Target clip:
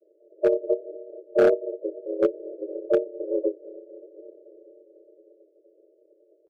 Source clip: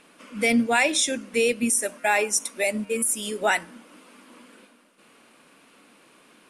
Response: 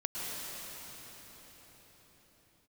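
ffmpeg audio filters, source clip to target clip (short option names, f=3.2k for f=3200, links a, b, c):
-filter_complex "[0:a]asuperpass=centerf=440:order=12:qfactor=5.9,asplit=2[a][b];[1:a]atrim=start_sample=2205[c];[b][c]afir=irnorm=-1:irlink=0,volume=-18dB[d];[a][d]amix=inputs=2:normalize=0,asplit=4[e][f][g][h];[f]asetrate=35002,aresample=44100,atempo=1.25992,volume=-2dB[i];[g]asetrate=55563,aresample=44100,atempo=0.793701,volume=-4dB[j];[h]asetrate=58866,aresample=44100,atempo=0.749154,volume=-4dB[k];[e][i][j][k]amix=inputs=4:normalize=0,aeval=exprs='0.447*(cos(1*acos(clip(val(0)/0.447,-1,1)))-cos(1*PI/2))+0.00355*(cos(4*acos(clip(val(0)/0.447,-1,1)))-cos(4*PI/2))':c=same,asoftclip=type=hard:threshold=-15dB,volume=3dB"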